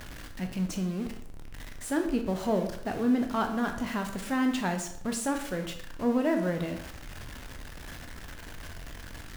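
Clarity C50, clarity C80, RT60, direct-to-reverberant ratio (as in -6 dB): 8.5 dB, 11.5 dB, 0.60 s, 4.5 dB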